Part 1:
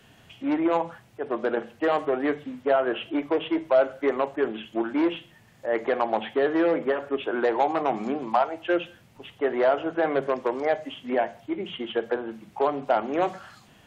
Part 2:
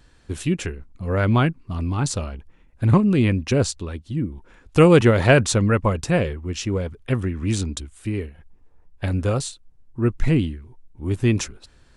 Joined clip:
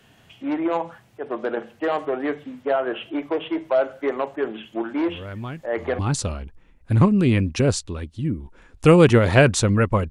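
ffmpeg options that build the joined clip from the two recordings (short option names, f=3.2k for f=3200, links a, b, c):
-filter_complex "[1:a]asplit=2[a][b];[0:a]apad=whole_dur=10.1,atrim=end=10.1,atrim=end=5.992[c];[b]atrim=start=1.908:end=6.02[d];[a]atrim=start=0.91:end=1.91,asetpts=PTS-STARTPTS,volume=-14.5dB,afade=t=in:d=0.004:c=hsin,afade=t=out:st=0.996:d=0.004:c=hsin,adelay=4990[e];[c][d]acrossfade=d=0.004:c1=hsin:c2=hsin[f];[f][e]amix=inputs=2:normalize=0"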